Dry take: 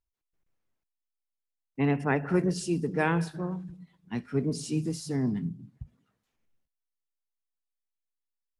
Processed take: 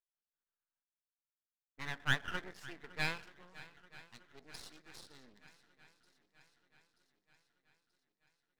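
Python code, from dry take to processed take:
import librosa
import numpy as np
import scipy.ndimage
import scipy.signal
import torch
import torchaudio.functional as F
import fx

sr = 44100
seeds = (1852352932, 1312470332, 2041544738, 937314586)

p1 = fx.wiener(x, sr, points=15)
p2 = fx.env_lowpass(p1, sr, base_hz=1500.0, full_db=-25.0)
p3 = scipy.signal.sosfilt(scipy.signal.butter(2, 210.0, 'highpass', fs=sr, output='sos'), p2)
p4 = fx.filter_sweep_bandpass(p3, sr, from_hz=1600.0, to_hz=3900.0, start_s=2.35, end_s=3.98, q=4.3)
p5 = p4 + fx.echo_swing(p4, sr, ms=932, ratio=1.5, feedback_pct=56, wet_db=-19.0, dry=0)
p6 = np.maximum(p5, 0.0)
y = p6 * 10.0 ** (8.5 / 20.0)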